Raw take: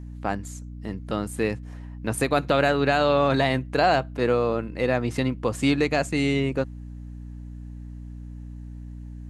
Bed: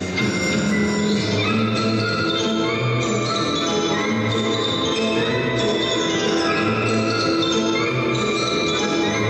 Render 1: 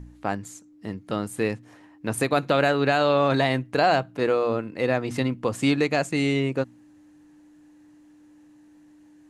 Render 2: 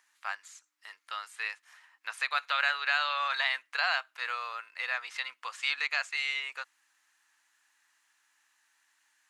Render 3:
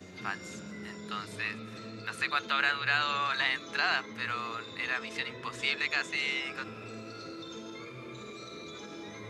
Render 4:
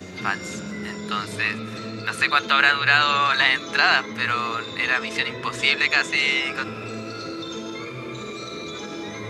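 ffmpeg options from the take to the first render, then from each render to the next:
-af "bandreject=f=60:t=h:w=4,bandreject=f=120:t=h:w=4,bandreject=f=180:t=h:w=4,bandreject=f=240:t=h:w=4"
-filter_complex "[0:a]highpass=f=1.2k:w=0.5412,highpass=f=1.2k:w=1.3066,acrossover=split=5700[a][b];[b]acompressor=threshold=-60dB:ratio=4:attack=1:release=60[c];[a][c]amix=inputs=2:normalize=0"
-filter_complex "[1:a]volume=-24dB[a];[0:a][a]amix=inputs=2:normalize=0"
-af "volume=11dB"

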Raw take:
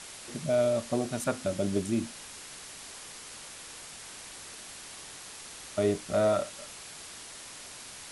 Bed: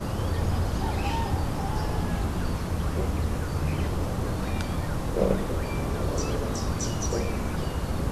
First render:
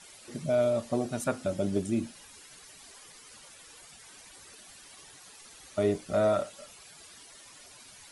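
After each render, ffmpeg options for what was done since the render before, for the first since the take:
-af "afftdn=nr=12:nf=-46"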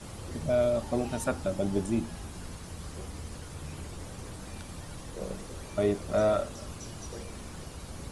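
-filter_complex "[1:a]volume=-14dB[a];[0:a][a]amix=inputs=2:normalize=0"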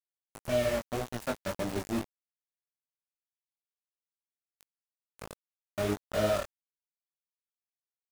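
-af "aeval=exprs='val(0)*gte(abs(val(0)),0.0422)':c=same,flanger=delay=16.5:depth=4.5:speed=1.8"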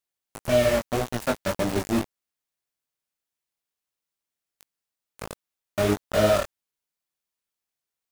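-af "volume=8dB"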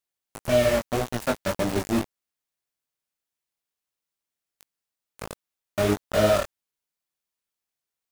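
-af anull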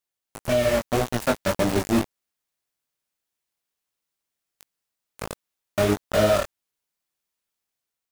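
-af "alimiter=limit=-13dB:level=0:latency=1:release=425,dynaudnorm=f=230:g=5:m=3.5dB"

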